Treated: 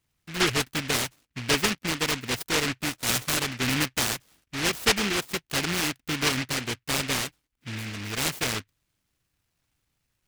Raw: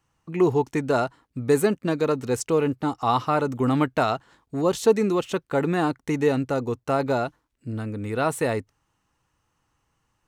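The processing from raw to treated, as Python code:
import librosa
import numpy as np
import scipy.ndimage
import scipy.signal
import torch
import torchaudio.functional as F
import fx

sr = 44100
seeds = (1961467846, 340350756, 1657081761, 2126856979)

y = fx.noise_mod_delay(x, sr, seeds[0], noise_hz=2100.0, depth_ms=0.49)
y = F.gain(torch.from_numpy(y), -4.5).numpy()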